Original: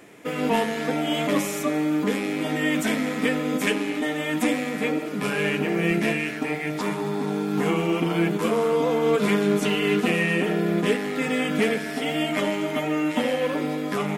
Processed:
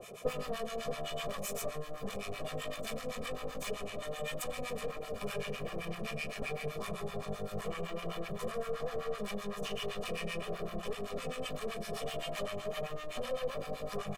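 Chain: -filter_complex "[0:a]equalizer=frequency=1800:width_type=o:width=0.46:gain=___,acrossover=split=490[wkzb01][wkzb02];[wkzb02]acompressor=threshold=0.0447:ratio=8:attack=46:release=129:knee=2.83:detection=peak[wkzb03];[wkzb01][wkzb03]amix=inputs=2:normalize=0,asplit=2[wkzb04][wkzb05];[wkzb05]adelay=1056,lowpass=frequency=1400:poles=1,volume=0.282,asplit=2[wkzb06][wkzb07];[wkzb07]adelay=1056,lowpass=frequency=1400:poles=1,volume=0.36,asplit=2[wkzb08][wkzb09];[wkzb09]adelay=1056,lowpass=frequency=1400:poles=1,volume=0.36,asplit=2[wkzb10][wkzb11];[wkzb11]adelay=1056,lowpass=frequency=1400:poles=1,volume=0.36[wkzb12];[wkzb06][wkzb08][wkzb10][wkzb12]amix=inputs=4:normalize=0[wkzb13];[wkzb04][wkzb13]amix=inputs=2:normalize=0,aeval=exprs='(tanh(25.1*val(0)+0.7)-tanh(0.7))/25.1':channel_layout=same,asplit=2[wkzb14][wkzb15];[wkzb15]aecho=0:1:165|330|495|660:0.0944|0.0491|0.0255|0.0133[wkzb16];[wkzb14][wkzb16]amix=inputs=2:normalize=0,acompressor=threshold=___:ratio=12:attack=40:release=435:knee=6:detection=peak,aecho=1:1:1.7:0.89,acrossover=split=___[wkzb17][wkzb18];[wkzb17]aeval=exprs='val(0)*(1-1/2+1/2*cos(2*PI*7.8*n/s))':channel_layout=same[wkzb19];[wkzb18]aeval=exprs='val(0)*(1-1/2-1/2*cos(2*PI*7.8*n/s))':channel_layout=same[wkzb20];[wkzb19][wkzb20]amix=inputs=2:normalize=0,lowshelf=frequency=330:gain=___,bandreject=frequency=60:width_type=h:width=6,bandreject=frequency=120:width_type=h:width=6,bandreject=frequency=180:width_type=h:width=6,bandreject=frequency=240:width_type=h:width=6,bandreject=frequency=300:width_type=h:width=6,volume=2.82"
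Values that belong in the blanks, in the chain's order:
-14.5, 0.01, 830, -3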